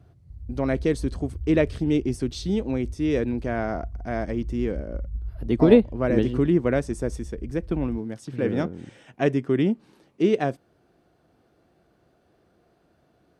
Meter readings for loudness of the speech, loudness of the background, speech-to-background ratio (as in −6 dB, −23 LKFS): −25.0 LKFS, −38.5 LKFS, 13.5 dB